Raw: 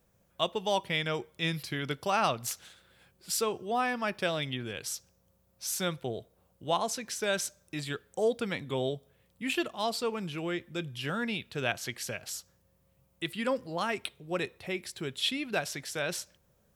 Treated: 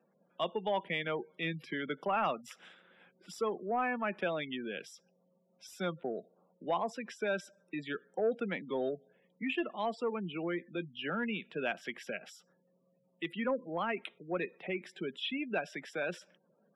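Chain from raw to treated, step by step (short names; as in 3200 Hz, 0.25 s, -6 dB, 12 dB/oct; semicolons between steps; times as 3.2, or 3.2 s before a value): spectral gate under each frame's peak -20 dB strong; steep high-pass 170 Hz 48 dB/oct; in parallel at -2 dB: compressor, threshold -39 dBFS, peak gain reduction 15.5 dB; on the sum: soft clip -17.5 dBFS, distortion -22 dB; polynomial smoothing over 25 samples; gain -3.5 dB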